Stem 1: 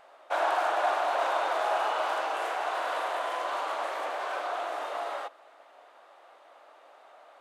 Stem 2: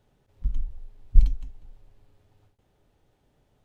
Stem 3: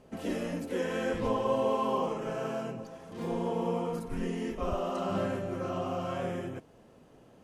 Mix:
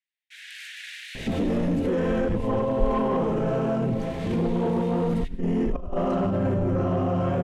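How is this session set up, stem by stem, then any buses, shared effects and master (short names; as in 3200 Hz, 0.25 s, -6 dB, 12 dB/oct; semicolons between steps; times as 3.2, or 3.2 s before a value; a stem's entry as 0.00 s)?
1.3 s -6.5 dB -> 2.01 s -17 dB -> 3.86 s -17 dB -> 4.35 s -5.5 dB, 0.00 s, bus A, no send, steep high-pass 1800 Hz 72 dB/oct; gate with hold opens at -54 dBFS
-19.0 dB, 1.65 s, no bus, no send, dry
+1.5 dB, 1.15 s, bus A, no send, tilt -3.5 dB/oct; negative-ratio compressor -26 dBFS, ratio -0.5
bus A: 0.0 dB, soft clip -19.5 dBFS, distortion -17 dB; limiter -27.5 dBFS, peak gain reduction 7.5 dB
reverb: off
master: AGC gain up to 9 dB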